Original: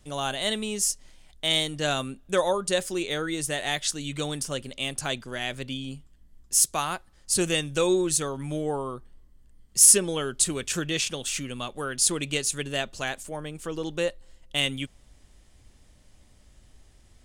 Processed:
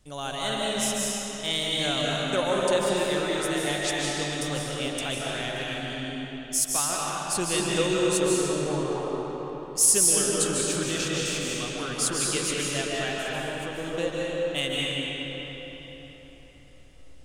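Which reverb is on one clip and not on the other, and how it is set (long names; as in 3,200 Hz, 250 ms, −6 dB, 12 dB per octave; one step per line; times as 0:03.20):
comb and all-pass reverb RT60 4.3 s, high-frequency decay 0.7×, pre-delay 110 ms, DRR −5 dB
level −4.5 dB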